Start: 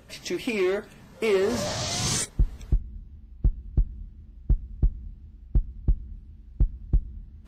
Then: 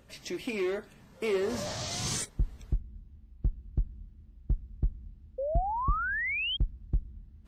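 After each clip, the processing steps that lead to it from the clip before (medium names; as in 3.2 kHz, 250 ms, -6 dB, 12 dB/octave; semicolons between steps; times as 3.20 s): painted sound rise, 5.38–6.57 s, 510–3300 Hz -25 dBFS; trim -6.5 dB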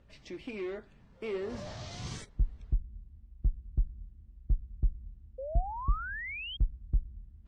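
Bessel low-pass 3.8 kHz, order 2; bass shelf 82 Hz +10.5 dB; trim -7 dB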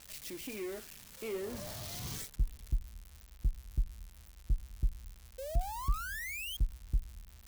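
zero-crossing glitches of -32.5 dBFS; trim -3 dB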